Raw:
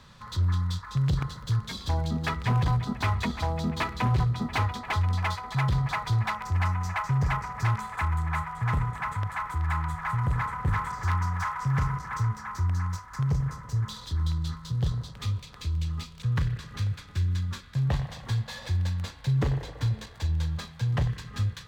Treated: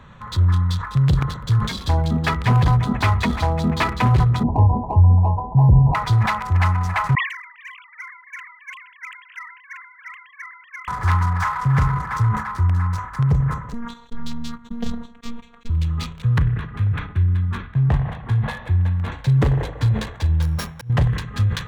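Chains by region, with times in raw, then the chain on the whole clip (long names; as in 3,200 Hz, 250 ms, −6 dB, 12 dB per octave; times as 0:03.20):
0:04.43–0:05.95: Butterworth low-pass 990 Hz 96 dB per octave + low-shelf EQ 300 Hz +5.5 dB
0:07.15–0:10.88: three sine waves on the formant tracks + inverse Chebyshev high-pass filter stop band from 440 Hz, stop band 80 dB + level that may fall only so fast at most 70 dB per second
0:13.73–0:15.70: noise gate −36 dBFS, range −45 dB + phases set to zero 235 Hz
0:16.38–0:19.12: high-frequency loss of the air 250 metres + notch filter 540 Hz, Q 8
0:20.42–0:20.90: samples sorted by size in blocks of 8 samples + volume swells 378 ms
whole clip: adaptive Wiener filter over 9 samples; level that may fall only so fast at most 96 dB per second; level +8.5 dB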